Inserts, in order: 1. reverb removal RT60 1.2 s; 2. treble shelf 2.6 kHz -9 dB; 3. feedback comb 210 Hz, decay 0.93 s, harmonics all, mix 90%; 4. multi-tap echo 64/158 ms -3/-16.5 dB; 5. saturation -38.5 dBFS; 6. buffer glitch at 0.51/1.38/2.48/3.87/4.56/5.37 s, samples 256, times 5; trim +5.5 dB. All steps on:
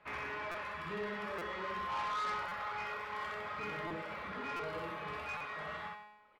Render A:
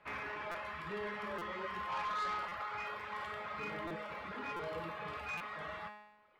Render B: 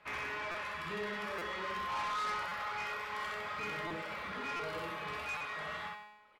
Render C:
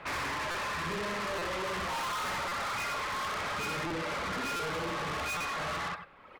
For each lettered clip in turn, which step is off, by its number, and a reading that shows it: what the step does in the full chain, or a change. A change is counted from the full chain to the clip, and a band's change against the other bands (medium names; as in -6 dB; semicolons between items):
4, loudness change -1.0 LU; 2, 8 kHz band +6.0 dB; 3, 8 kHz band +12.5 dB